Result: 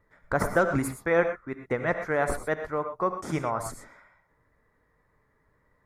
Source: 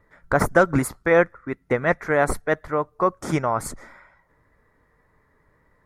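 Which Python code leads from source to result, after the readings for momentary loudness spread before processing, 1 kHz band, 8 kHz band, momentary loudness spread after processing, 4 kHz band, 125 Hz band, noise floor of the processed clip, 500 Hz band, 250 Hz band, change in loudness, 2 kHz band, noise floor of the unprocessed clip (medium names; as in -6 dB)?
8 LU, -5.5 dB, -6.0 dB, 8 LU, -6.0 dB, -6.0 dB, -69 dBFS, -6.0 dB, -6.0 dB, -6.0 dB, -6.0 dB, -64 dBFS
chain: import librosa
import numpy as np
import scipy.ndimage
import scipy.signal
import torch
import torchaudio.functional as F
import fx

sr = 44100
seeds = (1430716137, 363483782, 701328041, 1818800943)

y = fx.rev_gated(x, sr, seeds[0], gate_ms=140, shape='rising', drr_db=7.5)
y = y * 10.0 ** (-6.5 / 20.0)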